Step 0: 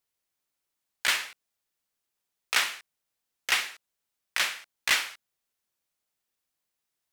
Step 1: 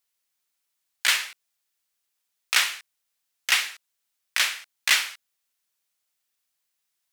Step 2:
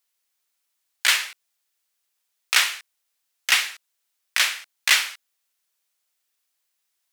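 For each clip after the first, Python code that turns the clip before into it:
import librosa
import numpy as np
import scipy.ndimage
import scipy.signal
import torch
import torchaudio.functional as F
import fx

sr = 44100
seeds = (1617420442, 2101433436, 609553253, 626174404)

y1 = fx.tilt_shelf(x, sr, db=-5.5, hz=940.0)
y2 = scipy.signal.sosfilt(scipy.signal.butter(2, 270.0, 'highpass', fs=sr, output='sos'), y1)
y2 = F.gain(torch.from_numpy(y2), 2.5).numpy()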